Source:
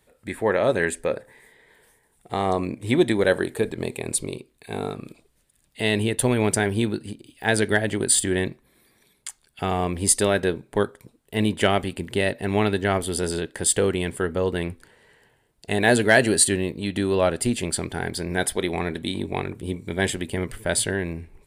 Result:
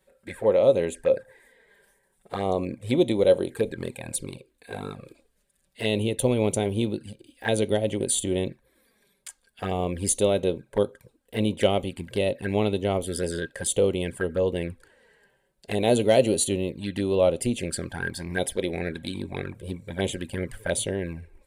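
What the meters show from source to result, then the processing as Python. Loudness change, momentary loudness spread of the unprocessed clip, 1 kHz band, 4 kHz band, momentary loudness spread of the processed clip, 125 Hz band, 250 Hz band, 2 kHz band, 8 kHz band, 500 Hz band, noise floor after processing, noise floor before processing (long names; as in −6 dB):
−2.5 dB, 12 LU, −5.5 dB, −4.0 dB, 14 LU, −2.5 dB, −3.0 dB, −9.5 dB, −6.5 dB, 0.0 dB, −70 dBFS, −65 dBFS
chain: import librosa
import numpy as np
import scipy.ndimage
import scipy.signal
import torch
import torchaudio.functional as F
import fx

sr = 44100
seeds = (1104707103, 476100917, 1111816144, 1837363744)

y = fx.env_flanger(x, sr, rest_ms=5.4, full_db=-20.0)
y = fx.small_body(y, sr, hz=(530.0, 1600.0), ring_ms=55, db=11)
y = F.gain(torch.from_numpy(y), -2.5).numpy()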